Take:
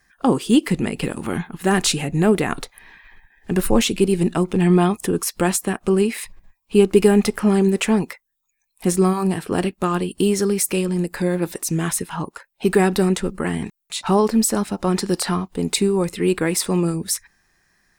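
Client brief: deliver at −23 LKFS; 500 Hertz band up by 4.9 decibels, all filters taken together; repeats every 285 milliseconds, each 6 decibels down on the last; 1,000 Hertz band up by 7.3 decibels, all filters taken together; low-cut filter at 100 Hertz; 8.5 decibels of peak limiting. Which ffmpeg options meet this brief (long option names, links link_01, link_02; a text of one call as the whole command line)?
ffmpeg -i in.wav -af "highpass=100,equalizer=frequency=500:width_type=o:gain=5.5,equalizer=frequency=1000:width_type=o:gain=7.5,alimiter=limit=-7dB:level=0:latency=1,aecho=1:1:285|570|855|1140|1425|1710:0.501|0.251|0.125|0.0626|0.0313|0.0157,volume=-5dB" out.wav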